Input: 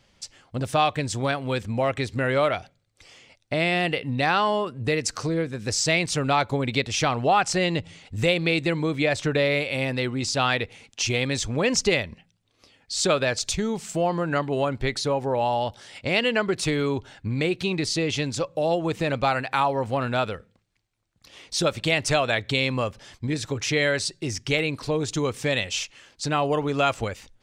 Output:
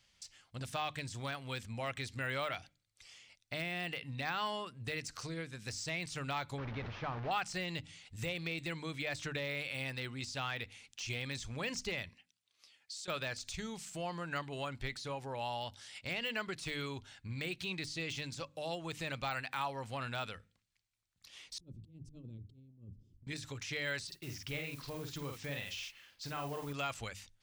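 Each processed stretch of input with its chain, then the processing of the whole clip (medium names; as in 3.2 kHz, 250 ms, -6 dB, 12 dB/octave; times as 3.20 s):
6.58–7.31 s: one-bit delta coder 32 kbps, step -20 dBFS + low-pass 1.1 kHz
12.09–13.08 s: high-pass 550 Hz 6 dB/octave + compression 10:1, threshold -36 dBFS
21.58–23.27 s: inverse Chebyshev low-pass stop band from 670 Hz + hum notches 50/100/150 Hz + compressor with a negative ratio -36 dBFS, ratio -0.5
24.07–26.73 s: distance through air 150 m + modulation noise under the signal 18 dB + doubling 49 ms -5 dB
whole clip: hum notches 50/100/150/200/250/300 Hz; de-esser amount 90%; amplifier tone stack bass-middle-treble 5-5-5; trim +1.5 dB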